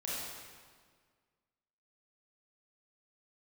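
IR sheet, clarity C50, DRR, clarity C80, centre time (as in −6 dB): −4.0 dB, −7.5 dB, −0.5 dB, 122 ms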